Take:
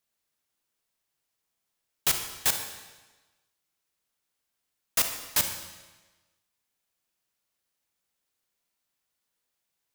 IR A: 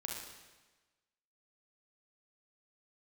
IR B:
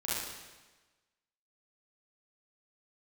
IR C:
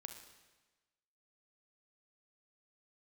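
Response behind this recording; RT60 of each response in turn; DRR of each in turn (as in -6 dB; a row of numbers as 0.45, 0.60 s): C; 1.2, 1.2, 1.2 s; -1.5, -9.5, 5.5 dB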